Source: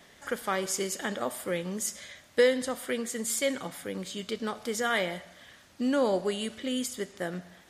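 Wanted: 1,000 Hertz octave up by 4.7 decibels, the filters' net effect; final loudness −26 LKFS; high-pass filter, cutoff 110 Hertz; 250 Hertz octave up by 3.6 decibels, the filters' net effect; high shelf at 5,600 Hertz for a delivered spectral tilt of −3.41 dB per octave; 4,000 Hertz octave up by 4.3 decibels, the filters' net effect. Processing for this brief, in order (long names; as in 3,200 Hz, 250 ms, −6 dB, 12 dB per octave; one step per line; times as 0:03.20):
high-pass filter 110 Hz
parametric band 250 Hz +4 dB
parametric band 1,000 Hz +6 dB
parametric band 4,000 Hz +8 dB
high-shelf EQ 5,600 Hz −6.5 dB
level +2.5 dB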